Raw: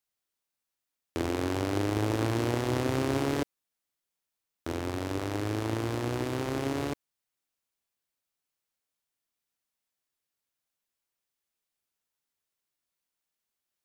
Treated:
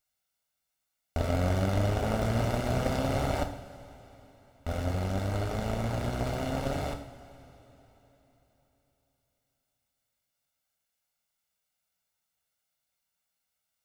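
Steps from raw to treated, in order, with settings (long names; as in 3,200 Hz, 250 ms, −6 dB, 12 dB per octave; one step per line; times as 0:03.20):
lower of the sound and its delayed copy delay 1.4 ms
coupled-rooms reverb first 0.59 s, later 3.8 s, from −15 dB, DRR 4.5 dB
level +4 dB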